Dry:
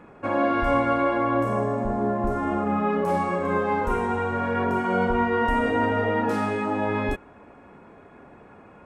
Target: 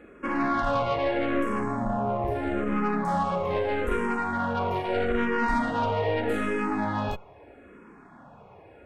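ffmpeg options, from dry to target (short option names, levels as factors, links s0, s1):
-filter_complex "[0:a]aeval=exprs='(tanh(11.2*val(0)+0.5)-tanh(0.5))/11.2':c=same,asplit=2[s0][s1];[s1]afreqshift=-0.79[s2];[s0][s2]amix=inputs=2:normalize=1,volume=1.5"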